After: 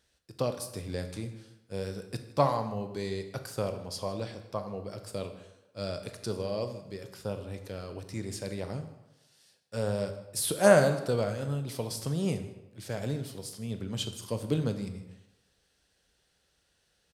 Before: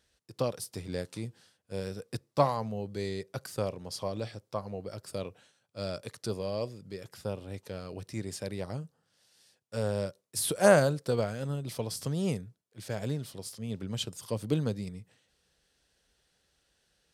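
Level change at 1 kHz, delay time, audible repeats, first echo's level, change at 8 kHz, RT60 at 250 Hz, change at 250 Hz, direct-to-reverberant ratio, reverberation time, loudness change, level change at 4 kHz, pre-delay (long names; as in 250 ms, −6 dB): +1.0 dB, 157 ms, 1, −19.0 dB, +0.5 dB, 0.85 s, +1.0 dB, 7.0 dB, 0.95 s, +1.0 dB, +0.5 dB, 16 ms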